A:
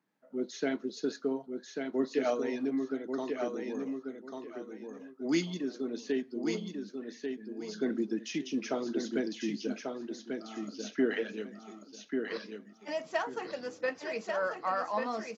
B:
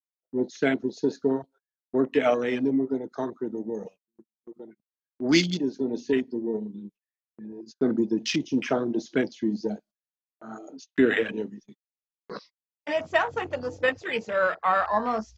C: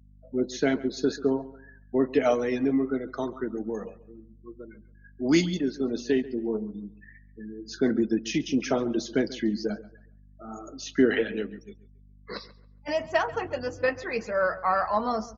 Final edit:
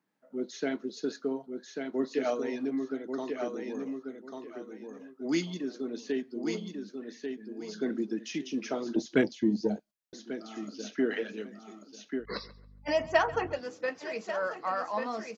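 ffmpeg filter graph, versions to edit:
-filter_complex "[0:a]asplit=3[a][b][c];[a]atrim=end=8.962[d];[1:a]atrim=start=8.958:end=10.132[e];[b]atrim=start=10.128:end=12.26[f];[2:a]atrim=start=12.16:end=13.61[g];[c]atrim=start=13.51[h];[d][e]acrossfade=d=0.004:c1=hsin:c2=hsin[i];[i][f]acrossfade=d=0.004:c1=hsin:c2=hsin[j];[j][g]acrossfade=d=0.1:c1=tri:c2=tri[k];[k][h]acrossfade=d=0.1:c1=tri:c2=tri"

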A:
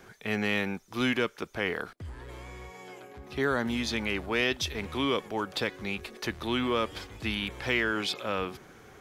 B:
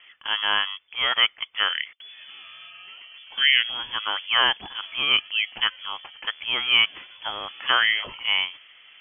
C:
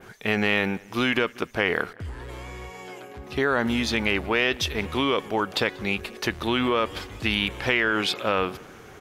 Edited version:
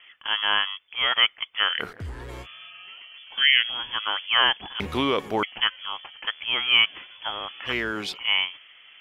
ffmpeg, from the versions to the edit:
-filter_complex "[2:a]asplit=2[a][b];[1:a]asplit=4[c][d][e][f];[c]atrim=end=1.84[g];[a]atrim=start=1.78:end=2.47[h];[d]atrim=start=2.41:end=4.802[i];[b]atrim=start=4.798:end=5.432[j];[e]atrim=start=5.428:end=7.74[k];[0:a]atrim=start=7.64:end=8.19[l];[f]atrim=start=8.09[m];[g][h]acrossfade=d=0.06:c1=tri:c2=tri[n];[n][i]acrossfade=d=0.06:c1=tri:c2=tri[o];[o][j]acrossfade=d=0.004:c1=hsin:c2=hsin[p];[p][k]acrossfade=d=0.004:c1=hsin:c2=hsin[q];[q][l]acrossfade=d=0.1:c1=tri:c2=tri[r];[r][m]acrossfade=d=0.1:c1=tri:c2=tri"

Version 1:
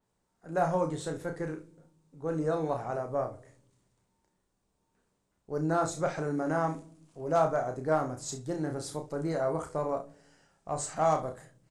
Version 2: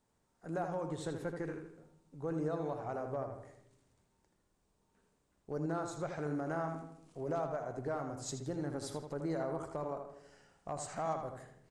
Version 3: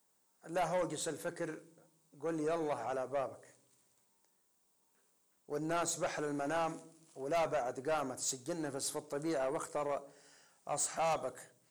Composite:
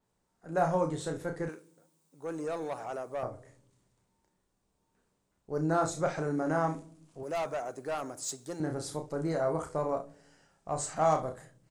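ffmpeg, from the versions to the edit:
-filter_complex "[2:a]asplit=2[a][b];[0:a]asplit=3[c][d][e];[c]atrim=end=1.492[f];[a]atrim=start=1.488:end=3.232[g];[d]atrim=start=3.228:end=7.232[h];[b]atrim=start=7.228:end=8.602[i];[e]atrim=start=8.598[j];[f][g]acrossfade=d=0.004:c1=hsin:c2=hsin[k];[k][h]acrossfade=d=0.004:c1=hsin:c2=hsin[l];[l][i]acrossfade=d=0.004:c1=hsin:c2=hsin[m];[m][j]acrossfade=d=0.004:c1=hsin:c2=hsin"

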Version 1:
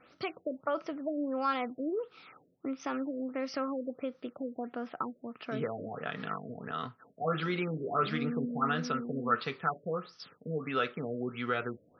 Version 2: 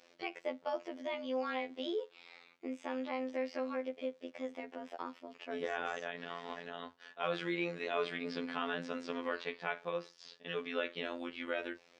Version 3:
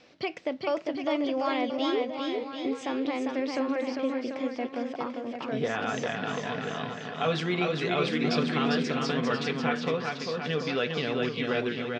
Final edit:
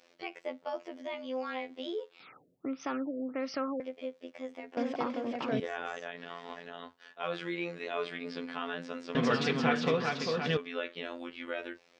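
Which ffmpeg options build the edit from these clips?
-filter_complex "[2:a]asplit=2[a][b];[1:a]asplit=4[c][d][e][f];[c]atrim=end=2.202[g];[0:a]atrim=start=2.198:end=3.802[h];[d]atrim=start=3.798:end=4.772[i];[a]atrim=start=4.768:end=5.602[j];[e]atrim=start=5.598:end=9.152[k];[b]atrim=start=9.148:end=10.572[l];[f]atrim=start=10.568[m];[g][h]acrossfade=d=0.004:c1=hsin:c2=hsin[n];[n][i]acrossfade=d=0.004:c1=hsin:c2=hsin[o];[o][j]acrossfade=d=0.004:c1=hsin:c2=hsin[p];[p][k]acrossfade=d=0.004:c1=hsin:c2=hsin[q];[q][l]acrossfade=d=0.004:c1=hsin:c2=hsin[r];[r][m]acrossfade=d=0.004:c1=hsin:c2=hsin"

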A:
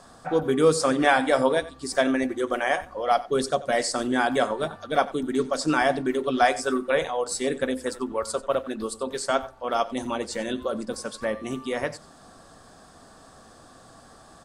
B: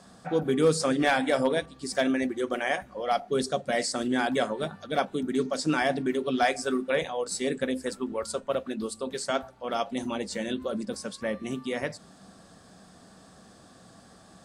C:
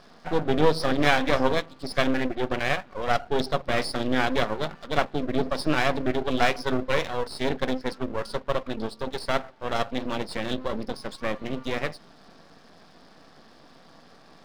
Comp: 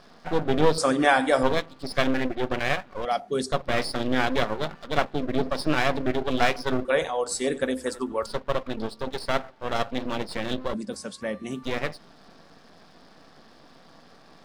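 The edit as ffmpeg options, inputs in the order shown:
-filter_complex "[0:a]asplit=2[a][b];[1:a]asplit=2[c][d];[2:a]asplit=5[e][f][g][h][i];[e]atrim=end=0.782[j];[a]atrim=start=0.778:end=1.432[k];[f]atrim=start=1.428:end=3.052[l];[c]atrim=start=3.048:end=3.522[m];[g]atrim=start=3.518:end=6.852[n];[b]atrim=start=6.848:end=8.262[o];[h]atrim=start=8.258:end=10.742[p];[d]atrim=start=10.738:end=11.632[q];[i]atrim=start=11.628[r];[j][k]acrossfade=d=0.004:c1=hsin:c2=hsin[s];[s][l]acrossfade=d=0.004:c1=hsin:c2=hsin[t];[t][m]acrossfade=d=0.004:c1=hsin:c2=hsin[u];[u][n]acrossfade=d=0.004:c1=hsin:c2=hsin[v];[v][o]acrossfade=d=0.004:c1=hsin:c2=hsin[w];[w][p]acrossfade=d=0.004:c1=hsin:c2=hsin[x];[x][q]acrossfade=d=0.004:c1=hsin:c2=hsin[y];[y][r]acrossfade=d=0.004:c1=hsin:c2=hsin"

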